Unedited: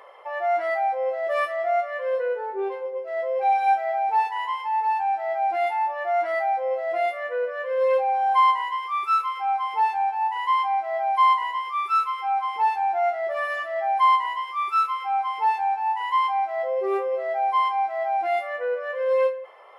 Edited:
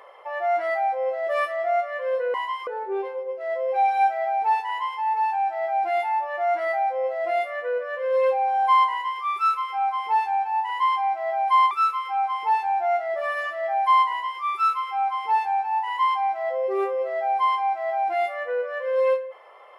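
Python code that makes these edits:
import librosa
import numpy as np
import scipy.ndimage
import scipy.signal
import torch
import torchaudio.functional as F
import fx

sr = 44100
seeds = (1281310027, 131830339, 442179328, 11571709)

y = fx.edit(x, sr, fx.cut(start_s=11.38, length_s=0.46),
    fx.duplicate(start_s=14.22, length_s=0.33, to_s=2.34), tone=tone)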